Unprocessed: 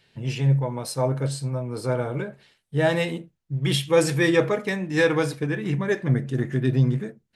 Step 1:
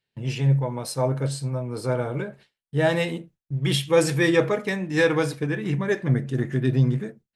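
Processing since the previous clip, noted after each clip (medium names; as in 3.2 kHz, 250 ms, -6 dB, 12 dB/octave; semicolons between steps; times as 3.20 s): gate with hold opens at -40 dBFS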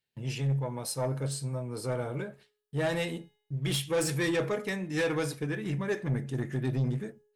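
treble shelf 7 kHz +8.5 dB; saturation -17 dBFS, distortion -13 dB; feedback comb 420 Hz, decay 0.74 s, mix 40%; trim -1.5 dB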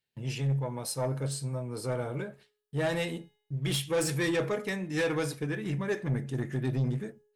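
no audible change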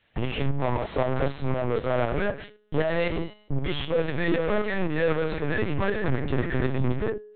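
overdrive pedal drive 33 dB, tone 1.3 kHz, clips at -22 dBFS; LPC vocoder at 8 kHz pitch kept; tremolo saw up 3.9 Hz, depth 50%; trim +6.5 dB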